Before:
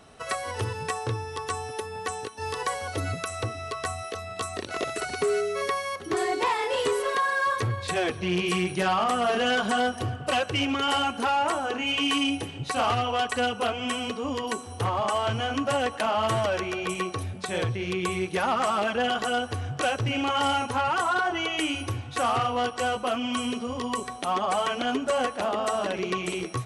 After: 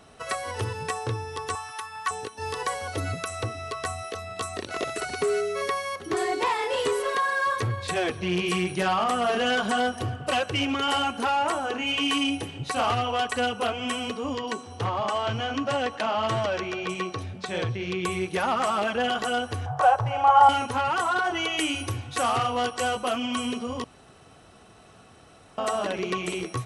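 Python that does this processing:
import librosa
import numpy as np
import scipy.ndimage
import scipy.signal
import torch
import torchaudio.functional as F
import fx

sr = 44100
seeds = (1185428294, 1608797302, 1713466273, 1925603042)

y = fx.low_shelf_res(x, sr, hz=750.0, db=-13.0, q=3.0, at=(1.55, 2.11))
y = fx.cheby1_bandpass(y, sr, low_hz=110.0, high_hz=5500.0, order=2, at=(14.35, 18.05))
y = fx.curve_eq(y, sr, hz=(140.0, 220.0, 830.0, 2400.0), db=(0, -23, 14, -9), at=(19.66, 20.49))
y = fx.high_shelf(y, sr, hz=4600.0, db=5.5, at=(21.24, 23.26))
y = fx.edit(y, sr, fx.room_tone_fill(start_s=23.84, length_s=1.74), tone=tone)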